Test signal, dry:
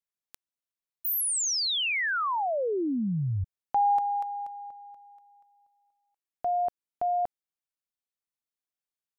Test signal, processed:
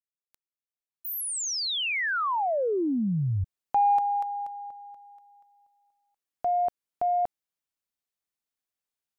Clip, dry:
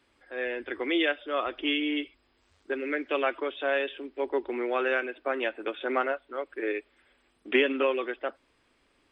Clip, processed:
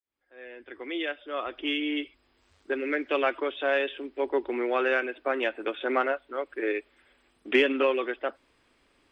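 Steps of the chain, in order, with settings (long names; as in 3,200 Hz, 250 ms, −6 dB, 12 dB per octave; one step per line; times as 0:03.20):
fade in at the beginning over 2.51 s
in parallel at −11.5 dB: soft clipping −19.5 dBFS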